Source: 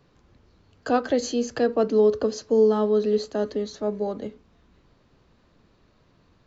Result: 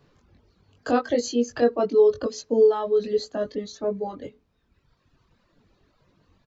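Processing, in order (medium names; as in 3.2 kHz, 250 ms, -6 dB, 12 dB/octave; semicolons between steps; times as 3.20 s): doubling 21 ms -3 dB; reverb removal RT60 1.7 s; trim -1 dB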